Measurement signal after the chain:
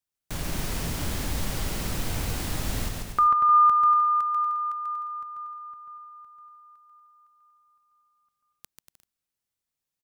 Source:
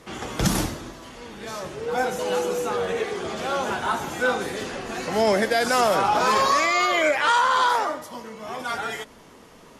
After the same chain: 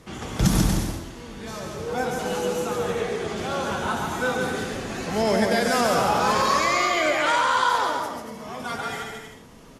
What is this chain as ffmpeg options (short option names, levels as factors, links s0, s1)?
-af "bass=f=250:g=8,treble=f=4000:g=2,aecho=1:1:140|238|306.6|354.6|388.2:0.631|0.398|0.251|0.158|0.1,volume=0.668"